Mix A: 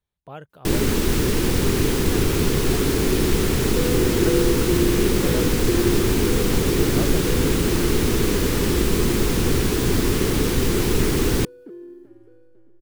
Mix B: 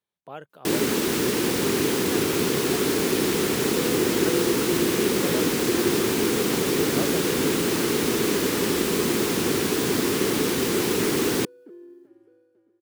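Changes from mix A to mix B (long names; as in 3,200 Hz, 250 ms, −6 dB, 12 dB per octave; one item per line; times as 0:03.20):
second sound −5.0 dB
master: add high-pass filter 220 Hz 12 dB per octave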